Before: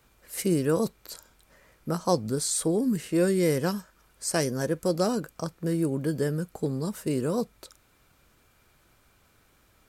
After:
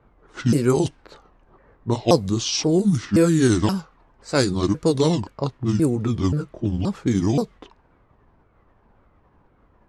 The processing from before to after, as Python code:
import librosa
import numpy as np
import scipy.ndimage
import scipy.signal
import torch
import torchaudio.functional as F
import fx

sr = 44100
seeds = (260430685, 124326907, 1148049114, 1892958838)

y = fx.pitch_ramps(x, sr, semitones=-8.5, every_ms=527)
y = fx.env_lowpass(y, sr, base_hz=1100.0, full_db=-21.5)
y = F.gain(torch.from_numpy(y), 8.0).numpy()